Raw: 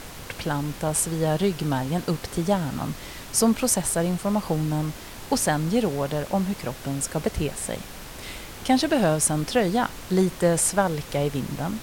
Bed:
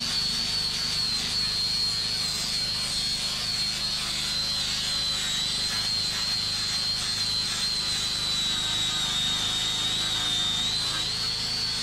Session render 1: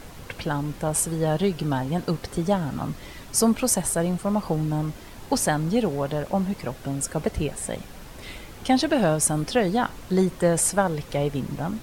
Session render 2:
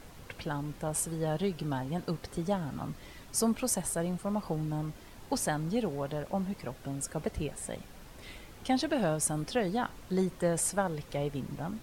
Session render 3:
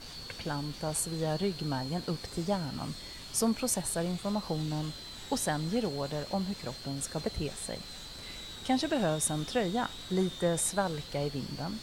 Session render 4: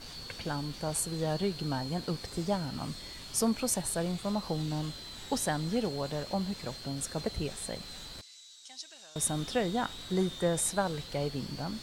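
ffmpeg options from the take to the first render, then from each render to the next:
-af "afftdn=nr=7:nf=-40"
-af "volume=0.376"
-filter_complex "[1:a]volume=0.112[s0];[0:a][s0]amix=inputs=2:normalize=0"
-filter_complex "[0:a]asettb=1/sr,asplit=3[s0][s1][s2];[s0]atrim=end=8.214[s3];[s1]atrim=start=8.21:end=9.16,asetpts=PTS-STARTPTS,afade=t=in:d=0.004:c=qsin,afade=t=out:st=0.946:d=0.004:c=qsin,bandpass=f=6300:t=q:w=2.5[s4];[s2]atrim=start=9.156[s5];[s3][s4]acrossfade=d=0.004:c1=hsin:c2=qsin[s6];[s6][s5]acrossfade=d=0.004:c1=qsin:c2=hsin"

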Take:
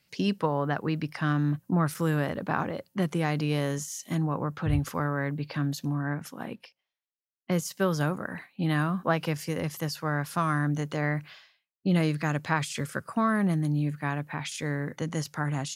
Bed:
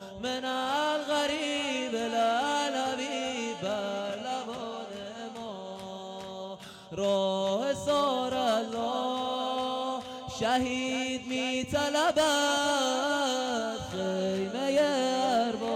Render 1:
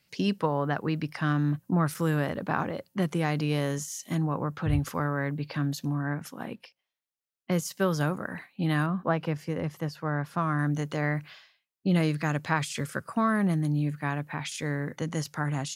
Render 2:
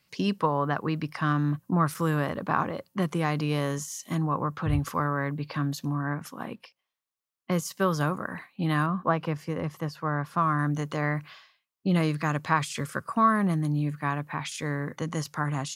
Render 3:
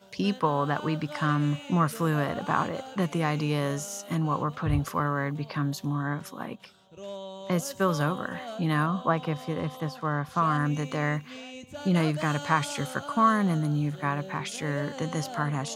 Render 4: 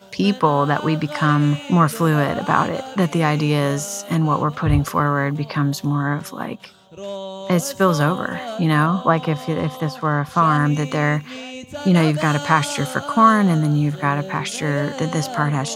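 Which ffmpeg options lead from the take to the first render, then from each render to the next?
-filter_complex "[0:a]asettb=1/sr,asplit=3[s0][s1][s2];[s0]atrim=end=8.864[s3];[s1]atrim=start=8.86:end=10.59,asetpts=PTS-STARTPTS,afade=t=in:d=0.004:c=qsin,afade=t=out:st=1.726:d=0.004:c=qsin,equalizer=f=11000:t=o:w=2.7:g=-14[s4];[s2]atrim=start=10.586[s5];[s3][s4]acrossfade=d=0.004:c1=hsin:c2=qsin[s6];[s6][s5]acrossfade=d=0.004:c1=qsin:c2=hsin"
-af "equalizer=f=1100:w=4:g=8"
-filter_complex "[1:a]volume=0.251[s0];[0:a][s0]amix=inputs=2:normalize=0"
-af "volume=2.82,alimiter=limit=0.891:level=0:latency=1"

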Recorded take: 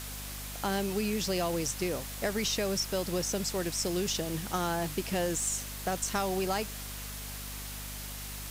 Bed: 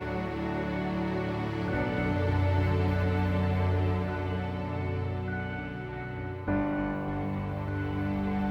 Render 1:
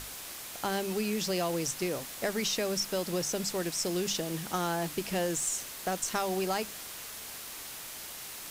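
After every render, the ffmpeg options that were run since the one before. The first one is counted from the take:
-af "bandreject=f=50:t=h:w=6,bandreject=f=100:t=h:w=6,bandreject=f=150:t=h:w=6,bandreject=f=200:t=h:w=6,bandreject=f=250:t=h:w=6"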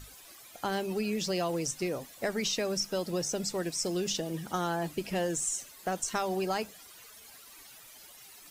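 -af "afftdn=nr=14:nf=-43"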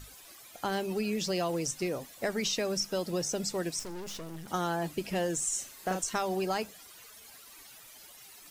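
-filter_complex "[0:a]asettb=1/sr,asplit=3[s0][s1][s2];[s0]atrim=end=3.794[s3];[s1]atrim=start=3.79:end=4.48,asetpts=PTS-STARTPTS,afade=t=in:d=0.004:c=qsin,afade=t=out:st=0.686:d=0.004:c=qsin,aeval=exprs='(tanh(89.1*val(0)+0.75)-tanh(0.75))/89.1':c=same[s4];[s2]atrim=start=4.476[s5];[s3][s4]acrossfade=d=0.004:c1=hsin:c2=qsin[s6];[s6][s5]acrossfade=d=0.004:c1=qsin:c2=hsin,asettb=1/sr,asplit=3[s7][s8][s9];[s7]atrim=end=5.494[s10];[s8]atrim=start=5.49:end=6.03,asetpts=PTS-STARTPTS,afade=t=in:d=0.004:c=qsin,afade=t=out:st=0.536:d=0.004:c=qsin,asplit=2[s11][s12];[s12]adelay=38,volume=0.596[s13];[s11][s13]amix=inputs=2:normalize=0,atrim=end_sample=23814[s14];[s9]atrim=start=6.026[s15];[s10][s14]acrossfade=d=0.004:c1=hsin:c2=qsin[s16];[s16][s15]acrossfade=d=0.004:c1=qsin:c2=hsin"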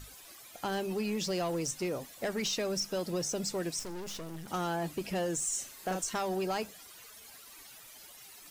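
-af "asoftclip=type=tanh:threshold=0.0531"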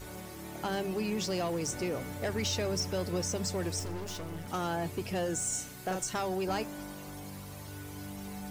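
-filter_complex "[1:a]volume=0.237[s0];[0:a][s0]amix=inputs=2:normalize=0"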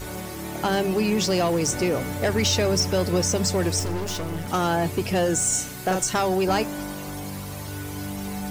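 -af "volume=3.35"

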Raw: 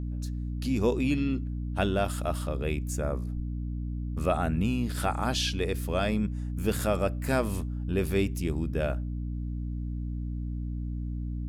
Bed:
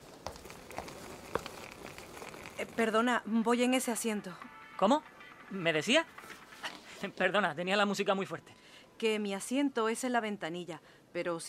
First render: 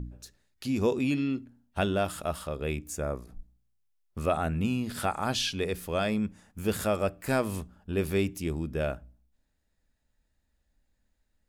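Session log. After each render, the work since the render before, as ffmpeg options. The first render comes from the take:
-af "bandreject=f=60:t=h:w=4,bandreject=f=120:t=h:w=4,bandreject=f=180:t=h:w=4,bandreject=f=240:t=h:w=4,bandreject=f=300:t=h:w=4"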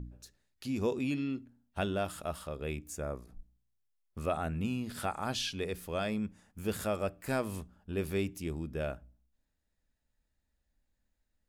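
-af "volume=0.531"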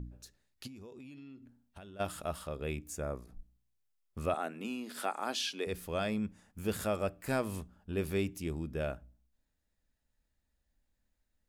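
-filter_complex "[0:a]asplit=3[s0][s1][s2];[s0]afade=t=out:st=0.66:d=0.02[s3];[s1]acompressor=threshold=0.00447:ratio=10:attack=3.2:release=140:knee=1:detection=peak,afade=t=in:st=0.66:d=0.02,afade=t=out:st=1.99:d=0.02[s4];[s2]afade=t=in:st=1.99:d=0.02[s5];[s3][s4][s5]amix=inputs=3:normalize=0,asettb=1/sr,asplit=3[s6][s7][s8];[s6]atrim=end=4.344[s9];[s7]atrim=start=4.34:end=5.67,asetpts=PTS-STARTPTS,afade=t=in:d=0.004:c=qsin,afade=t=out:st=1.326:d=0.004:c=qsin,highpass=f=260:w=0.5412,highpass=f=260:w=1.3066[s10];[s8]atrim=start=5.666[s11];[s9][s10]acrossfade=d=0.004:c1=hsin:c2=qsin[s12];[s12][s11]acrossfade=d=0.004:c1=qsin:c2=hsin"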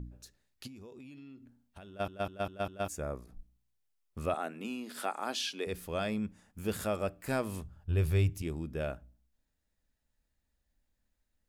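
-filter_complex "[0:a]asettb=1/sr,asplit=3[s0][s1][s2];[s0]atrim=end=7.644[s3];[s1]atrim=start=7.64:end=8.42,asetpts=PTS-STARTPTS,afade=t=in:d=0.004:c=qsin,afade=t=out:st=0.776:d=0.004:c=qsin,lowshelf=f=160:t=q:w=3:g=9[s4];[s2]atrim=start=8.416[s5];[s3][s4]acrossfade=d=0.004:c1=hsin:c2=qsin[s6];[s6][s5]acrossfade=d=0.004:c1=qsin:c2=hsin,asplit=6[s7][s8][s9][s10][s11][s12];[s7]atrim=end=2.082[s13];[s8]atrim=start=1.878:end=2.082[s14];[s9]atrim=start=1.878:end=2.082[s15];[s10]atrim=start=1.878:end=2.082[s16];[s11]atrim=start=1.878:end=2.082[s17];[s12]atrim=start=2.878[s18];[s13][s14]acrossfade=d=0.004:c1=hsin:c2=hsin[s19];[s19][s15]acrossfade=d=0.004:c1=hsin:c2=hsin[s20];[s20][s16]acrossfade=d=0.004:c1=hsin:c2=hsin[s21];[s21][s17]acrossfade=d=0.004:c1=hsin:c2=hsin[s22];[s22][s18]acrossfade=d=0.004:c1=hsin:c2=hsin"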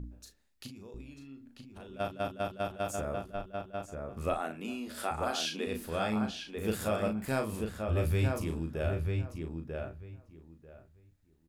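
-filter_complex "[0:a]asplit=2[s0][s1];[s1]adelay=37,volume=0.501[s2];[s0][s2]amix=inputs=2:normalize=0,asplit=2[s3][s4];[s4]adelay=942,lowpass=f=2500:p=1,volume=0.668,asplit=2[s5][s6];[s6]adelay=942,lowpass=f=2500:p=1,volume=0.18,asplit=2[s7][s8];[s8]adelay=942,lowpass=f=2500:p=1,volume=0.18[s9];[s5][s7][s9]amix=inputs=3:normalize=0[s10];[s3][s10]amix=inputs=2:normalize=0"

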